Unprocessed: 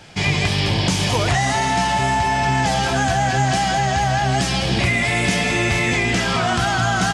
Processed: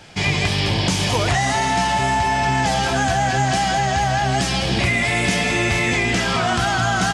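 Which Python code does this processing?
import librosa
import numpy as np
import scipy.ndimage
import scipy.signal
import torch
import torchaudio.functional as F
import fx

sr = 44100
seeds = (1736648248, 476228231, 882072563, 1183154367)

y = fx.peak_eq(x, sr, hz=140.0, db=-2.0, octaves=0.77)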